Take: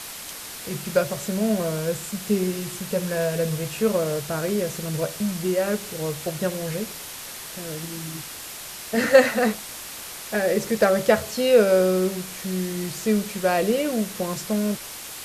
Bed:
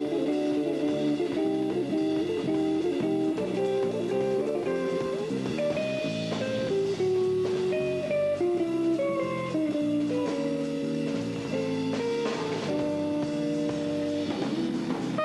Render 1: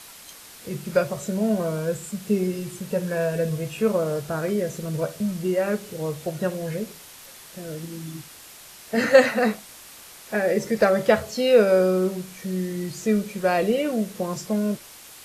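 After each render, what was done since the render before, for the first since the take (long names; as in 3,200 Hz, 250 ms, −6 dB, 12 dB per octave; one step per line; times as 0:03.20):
noise reduction from a noise print 8 dB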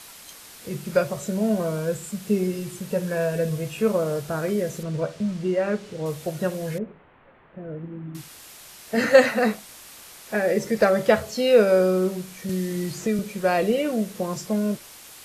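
0:04.83–0:06.06: high-frequency loss of the air 81 metres
0:06.78–0:08.15: Gaussian smoothing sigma 4.7 samples
0:12.49–0:13.19: multiband upward and downward compressor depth 70%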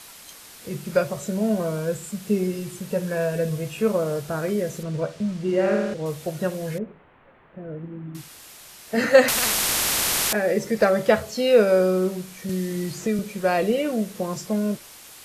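0:05.43–0:05.94: flutter between parallel walls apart 9 metres, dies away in 1.1 s
0:09.28–0:10.33: every bin compressed towards the loudest bin 10 to 1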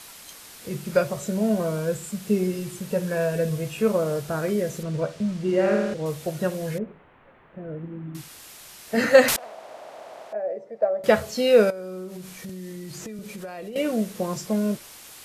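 0:09.36–0:11.04: resonant band-pass 640 Hz, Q 5.4
0:11.70–0:13.76: downward compressor 8 to 1, threshold −33 dBFS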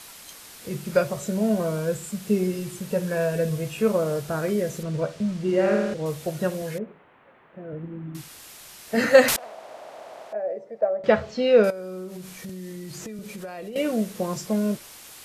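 0:06.62–0:07.73: high-pass filter 210 Hz 6 dB per octave
0:10.81–0:11.64: high-frequency loss of the air 170 metres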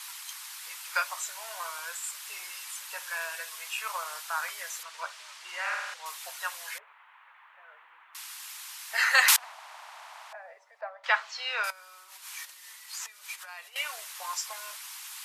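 elliptic high-pass filter 920 Hz, stop band 80 dB
harmonic and percussive parts rebalanced percussive +5 dB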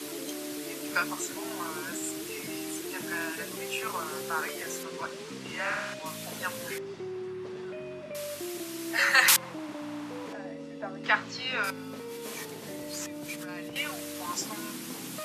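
mix in bed −12 dB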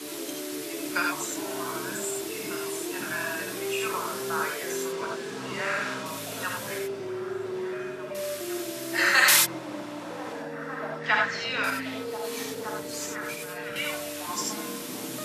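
echo through a band-pass that steps 515 ms, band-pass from 370 Hz, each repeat 0.7 octaves, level −4 dB
reverb whose tail is shaped and stops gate 110 ms rising, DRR 0.5 dB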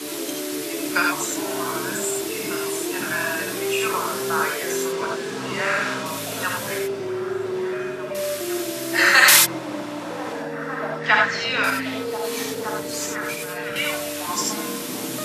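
level +6.5 dB
brickwall limiter −1 dBFS, peak gain reduction 1 dB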